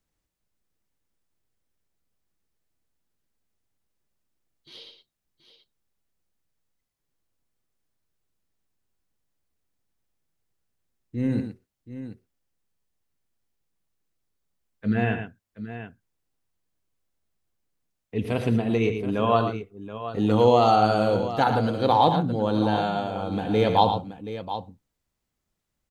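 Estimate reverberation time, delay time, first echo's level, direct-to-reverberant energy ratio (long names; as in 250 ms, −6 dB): no reverb audible, 75 ms, −13.0 dB, no reverb audible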